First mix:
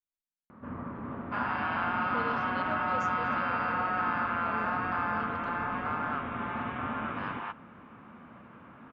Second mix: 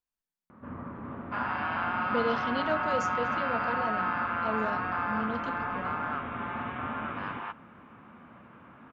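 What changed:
speech +9.5 dB; first sound: send -8.5 dB

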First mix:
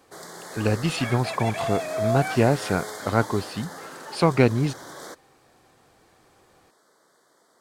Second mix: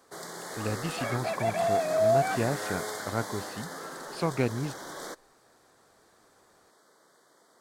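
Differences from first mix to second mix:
speech -9.5 dB; second sound: add tilt EQ -4 dB/octave

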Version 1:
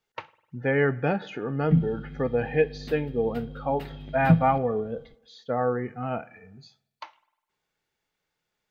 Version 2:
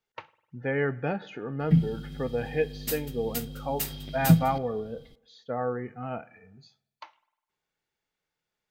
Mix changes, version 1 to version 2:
speech -4.5 dB; background: remove distance through air 430 m

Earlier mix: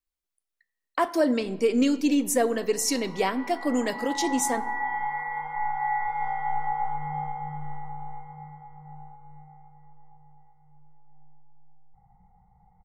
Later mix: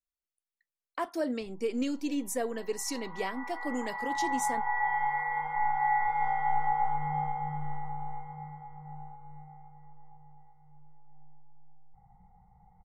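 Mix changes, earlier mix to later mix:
speech -8.5 dB; reverb: off

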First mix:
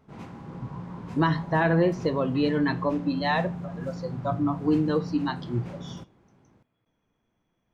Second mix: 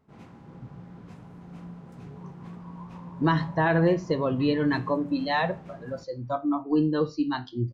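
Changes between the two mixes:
speech: entry +2.05 s; background -6.5 dB

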